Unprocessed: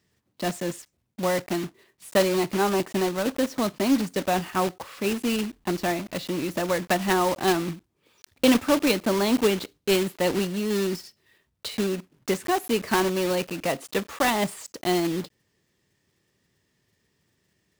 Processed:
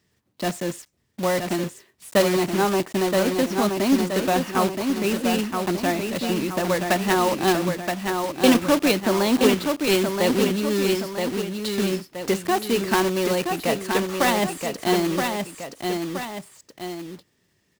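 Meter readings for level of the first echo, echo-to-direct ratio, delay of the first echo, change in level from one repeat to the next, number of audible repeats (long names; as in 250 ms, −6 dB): −5.0 dB, −4.0 dB, 973 ms, −6.0 dB, 2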